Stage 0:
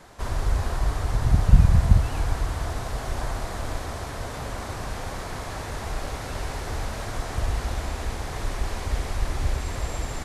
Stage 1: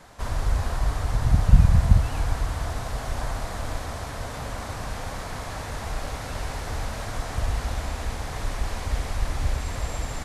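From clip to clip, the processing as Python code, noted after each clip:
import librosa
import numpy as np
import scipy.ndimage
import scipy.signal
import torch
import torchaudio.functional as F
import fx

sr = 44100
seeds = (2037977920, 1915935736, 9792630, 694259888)

y = fx.peak_eq(x, sr, hz=370.0, db=-6.5, octaves=0.33)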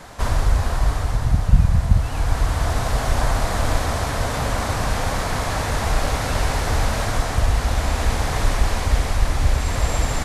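y = fx.rider(x, sr, range_db=5, speed_s=0.5)
y = F.gain(torch.from_numpy(y), 5.5).numpy()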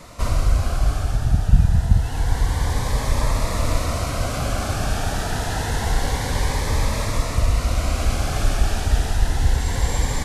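y = fx.notch_cascade(x, sr, direction='rising', hz=0.27)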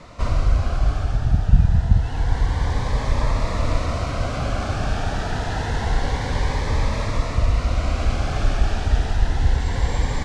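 y = fx.air_absorb(x, sr, metres=110.0)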